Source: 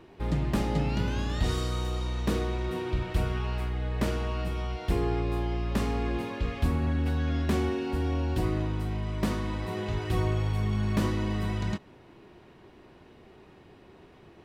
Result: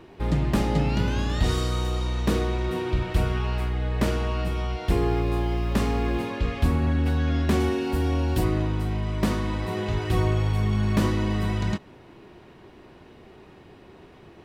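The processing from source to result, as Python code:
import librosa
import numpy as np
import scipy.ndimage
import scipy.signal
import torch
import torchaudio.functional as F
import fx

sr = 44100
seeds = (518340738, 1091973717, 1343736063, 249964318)

y = fx.dmg_noise_colour(x, sr, seeds[0], colour='pink', level_db=-61.0, at=(4.88, 6.22), fade=0.02)
y = fx.high_shelf(y, sr, hz=8700.0, db=11.0, at=(7.6, 8.44))
y = F.gain(torch.from_numpy(y), 4.5).numpy()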